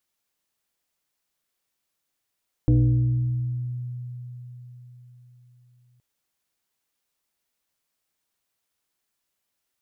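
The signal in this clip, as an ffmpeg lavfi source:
-f lavfi -i "aevalsrc='0.211*pow(10,-3*t/4.44)*sin(2*PI*123*t+1*pow(10,-3*t/2.17)*sin(2*PI*1.5*123*t))':d=3.32:s=44100"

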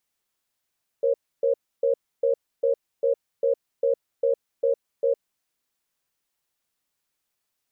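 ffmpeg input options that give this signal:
-f lavfi -i "aevalsrc='0.0891*(sin(2*PI*473*t)+sin(2*PI*545*t))*clip(min(mod(t,0.4),0.11-mod(t,0.4))/0.005,0,1)':d=4.11:s=44100"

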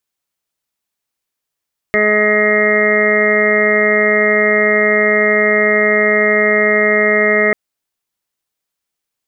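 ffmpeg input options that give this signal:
-f lavfi -i "aevalsrc='0.0891*sin(2*PI*211*t)+0.168*sin(2*PI*422*t)+0.141*sin(2*PI*633*t)+0.0141*sin(2*PI*844*t)+0.00891*sin(2*PI*1055*t)+0.0708*sin(2*PI*1266*t)+0.0141*sin(2*PI*1477*t)+0.0422*sin(2*PI*1688*t)+0.178*sin(2*PI*1899*t)+0.158*sin(2*PI*2110*t)':d=5.59:s=44100"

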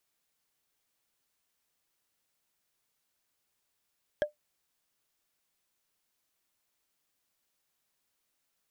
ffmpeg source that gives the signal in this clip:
-f lavfi -i "aevalsrc='0.1*pow(10,-3*t/0.13)*sin(2*PI*597*t)+0.0447*pow(10,-3*t/0.038)*sin(2*PI*1645.9*t)+0.02*pow(10,-3*t/0.017)*sin(2*PI*3226.2*t)+0.00891*pow(10,-3*t/0.009)*sin(2*PI*5333*t)+0.00398*pow(10,-3*t/0.006)*sin(2*PI*7964*t)':d=0.45:s=44100"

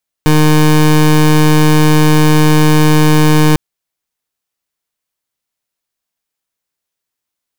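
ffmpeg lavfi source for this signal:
-f lavfi -i "aevalsrc='0.422*(2*lt(mod(153*t,1),0.23)-1)':d=3.3:s=44100"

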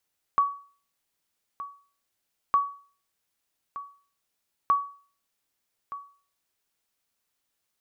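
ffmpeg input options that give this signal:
-f lavfi -i "aevalsrc='0.188*(sin(2*PI*1130*mod(t,2.16))*exp(-6.91*mod(t,2.16)/0.42)+0.178*sin(2*PI*1130*max(mod(t,2.16)-1.22,0))*exp(-6.91*max(mod(t,2.16)-1.22,0)/0.42))':d=6.48:s=44100"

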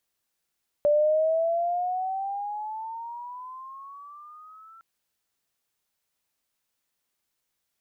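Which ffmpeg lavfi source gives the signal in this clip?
-f lavfi -i "aevalsrc='pow(10,(-17-30*t/3.96)/20)*sin(2*PI*584*3.96/(14.5*log(2)/12)*(exp(14.5*log(2)/12*t/3.96)-1))':d=3.96:s=44100"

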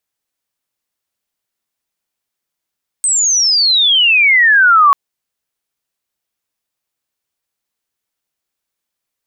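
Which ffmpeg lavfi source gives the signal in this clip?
-f lavfi -i "aevalsrc='pow(10,(-10.5+6*t/1.89)/20)*sin(2*PI*8400*1.89/log(1100/8400)*(exp(log(1100/8400)*t/1.89)-1))':d=1.89:s=44100"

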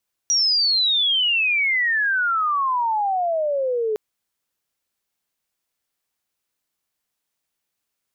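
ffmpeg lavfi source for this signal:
-f lavfi -i "aevalsrc='pow(10,(-15.5-4*t/3.66)/20)*sin(2*PI*5800*3.66/log(420/5800)*(exp(log(420/5800)*t/3.66)-1))':d=3.66:s=44100"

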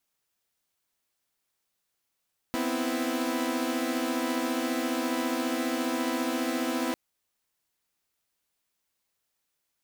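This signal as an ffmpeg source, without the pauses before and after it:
-f lavfi -i "aevalsrc='0.0355*((2*mod(246.94*t,1)-1)+(2*mod(261.63*t,1)-1)+(2*mod(329.63*t,1)-1))':d=4.4:s=44100"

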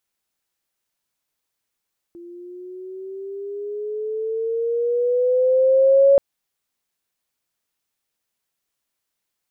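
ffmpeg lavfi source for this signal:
-f lavfi -i "aevalsrc='pow(10,(-9+27.5*(t/4.03-1))/20)*sin(2*PI*342*4.03/(8.5*log(2)/12)*(exp(8.5*log(2)/12*t/4.03)-1))':d=4.03:s=44100"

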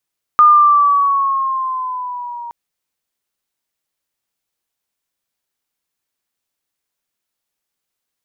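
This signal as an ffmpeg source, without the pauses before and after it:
-f lavfi -i "aevalsrc='pow(10,(-4-22*t/2.12)/20)*sin(2*PI*1220*2.12/(-4.5*log(2)/12)*(exp(-4.5*log(2)/12*t/2.12)-1))':d=2.12:s=44100"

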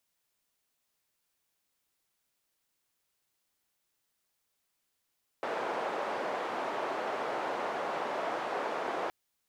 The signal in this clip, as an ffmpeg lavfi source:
-f lavfi -i "anoisesrc=c=white:d=3.67:r=44100:seed=1,highpass=f=540,lowpass=f=720,volume=-10.9dB"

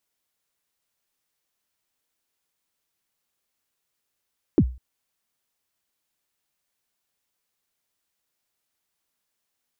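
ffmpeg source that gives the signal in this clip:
-f lavfi -i "aevalsrc='0.335*pow(10,-3*t/0.35)*sin(2*PI*(390*0.061/log(62/390)*(exp(log(62/390)*min(t,0.061)/0.061)-1)+62*max(t-0.061,0)))':d=0.2:s=44100"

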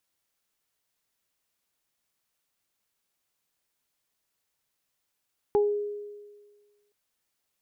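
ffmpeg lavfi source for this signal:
-f lavfi -i "aevalsrc='0.126*pow(10,-3*t/1.53)*sin(2*PI*413*t)+0.0531*pow(10,-3*t/0.25)*sin(2*PI*826*t)':d=1.37:s=44100"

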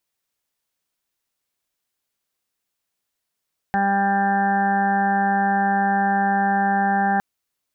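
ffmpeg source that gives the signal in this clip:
-f lavfi -i "aevalsrc='0.0708*sin(2*PI*198*t)+0.02*sin(2*PI*396*t)+0.0141*sin(2*PI*594*t)+0.119*sin(2*PI*792*t)+0.0126*sin(2*PI*990*t)+0.01*sin(2*PI*1188*t)+0.0126*sin(2*PI*1386*t)+0.0447*sin(2*PI*1584*t)+0.0316*sin(2*PI*1782*t)':d=3.46:s=44100"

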